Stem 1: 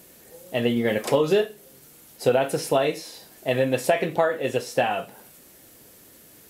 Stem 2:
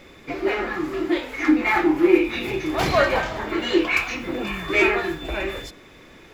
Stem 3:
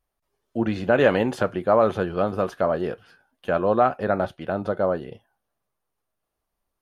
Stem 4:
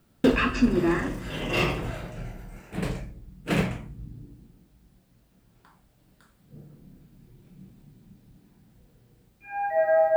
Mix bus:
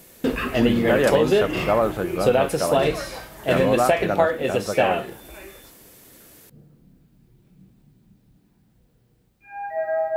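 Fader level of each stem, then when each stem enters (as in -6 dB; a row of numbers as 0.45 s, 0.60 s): +1.5 dB, -15.0 dB, -2.0 dB, -3.0 dB; 0.00 s, 0.00 s, 0.00 s, 0.00 s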